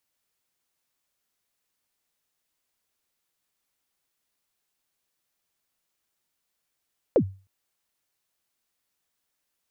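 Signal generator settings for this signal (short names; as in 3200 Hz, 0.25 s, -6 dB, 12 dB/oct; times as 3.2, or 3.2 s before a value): kick drum length 0.31 s, from 590 Hz, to 96 Hz, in 77 ms, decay 0.34 s, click off, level -12 dB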